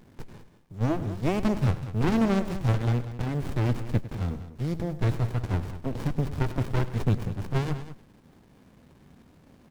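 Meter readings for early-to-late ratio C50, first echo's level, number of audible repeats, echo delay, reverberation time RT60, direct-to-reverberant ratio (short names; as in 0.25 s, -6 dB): none, -15.5 dB, 2, 0.102 s, none, none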